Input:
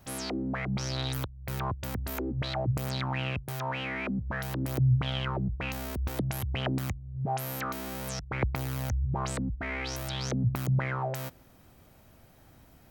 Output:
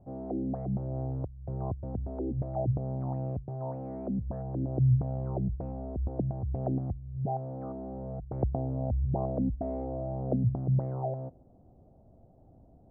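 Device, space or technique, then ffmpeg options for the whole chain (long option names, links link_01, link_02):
under water: -filter_complex "[0:a]asettb=1/sr,asplit=3[link_01][link_02][link_03];[link_01]atrim=end=8.524[link_04];[link_02]atrim=start=8.52:end=10.36,asetpts=PTS-STARTPTS,afade=type=in:duration=0.004:curve=qsin,afade=type=out:start_time=1.836:duration=0.004:curve=qsin,equalizer=frequency=250:width_type=o:width=0.67:gain=5,equalizer=frequency=630:width_type=o:width=0.67:gain=7,equalizer=frequency=1600:width_type=o:width=0.67:gain=-3,equalizer=frequency=4000:width_type=o:width=0.67:gain=3[link_05];[link_03]atrim=start=10.356[link_06];[link_04][link_05]acrossfade=duration=0.004:curve1=hsin:curve2=qsin[link_07];[link_07][link_06]acrossfade=duration=0.004:curve1=qsin:curve2=hsin,lowpass=frequency=650:width=0.5412,lowpass=frequency=650:width=1.3066,equalizer=frequency=720:width_type=o:width=0.37:gain=7"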